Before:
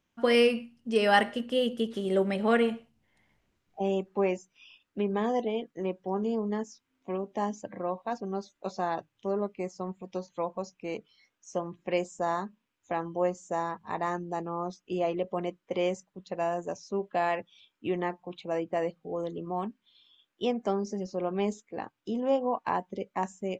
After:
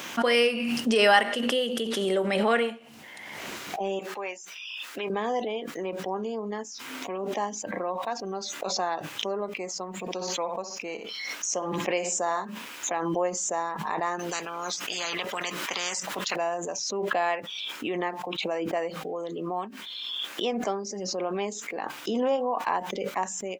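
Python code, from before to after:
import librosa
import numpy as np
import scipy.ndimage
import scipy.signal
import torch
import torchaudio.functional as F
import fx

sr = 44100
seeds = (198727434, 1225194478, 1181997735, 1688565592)

y = fx.highpass(x, sr, hz=1200.0, slope=6, at=(3.99, 5.1))
y = fx.echo_feedback(y, sr, ms=61, feedback_pct=15, wet_db=-12.0, at=(10.0, 12.45))
y = fx.spectral_comp(y, sr, ratio=4.0, at=(14.19, 16.36))
y = scipy.signal.sosfilt(scipy.signal.butter(2, 190.0, 'highpass', fs=sr, output='sos'), y)
y = fx.low_shelf(y, sr, hz=420.0, db=-11.0)
y = fx.pre_swell(y, sr, db_per_s=23.0)
y = F.gain(torch.from_numpy(y), 4.0).numpy()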